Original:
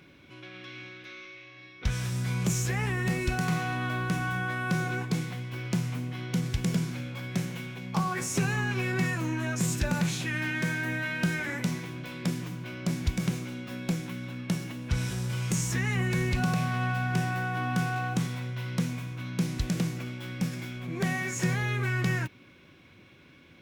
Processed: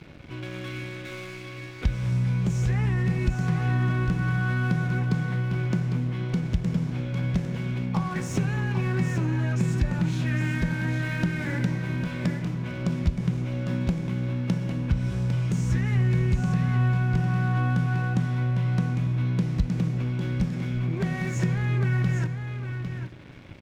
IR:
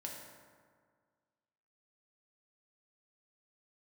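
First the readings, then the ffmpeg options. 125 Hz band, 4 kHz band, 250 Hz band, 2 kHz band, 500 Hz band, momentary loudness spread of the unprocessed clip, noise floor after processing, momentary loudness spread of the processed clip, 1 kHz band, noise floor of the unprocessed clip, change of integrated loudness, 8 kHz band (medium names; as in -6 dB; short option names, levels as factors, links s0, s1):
+7.0 dB, -4.0 dB, +3.5 dB, -2.0 dB, +1.5 dB, 9 LU, -39 dBFS, 7 LU, -2.0 dB, -55 dBFS, +4.0 dB, -9.0 dB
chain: -filter_complex "[0:a]aemphasis=mode=reproduction:type=bsi,acompressor=threshold=0.0112:ratio=2.5,aeval=exprs='sgn(val(0))*max(abs(val(0))-0.00237,0)':c=same,aecho=1:1:803:0.422,asplit=2[s0][s1];[1:a]atrim=start_sample=2205[s2];[s1][s2]afir=irnorm=-1:irlink=0,volume=0.422[s3];[s0][s3]amix=inputs=2:normalize=0,volume=2.51"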